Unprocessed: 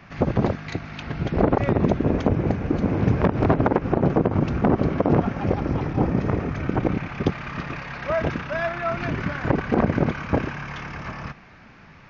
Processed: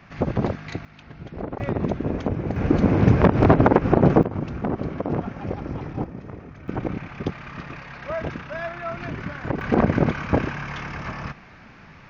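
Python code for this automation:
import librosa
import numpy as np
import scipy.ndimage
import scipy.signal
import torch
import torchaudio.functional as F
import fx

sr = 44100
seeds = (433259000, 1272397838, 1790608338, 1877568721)

y = fx.gain(x, sr, db=fx.steps((0.0, -2.0), (0.85, -12.5), (1.6, -4.5), (2.56, 4.0), (4.23, -6.5), (6.04, -14.5), (6.68, -5.0), (9.61, 1.5)))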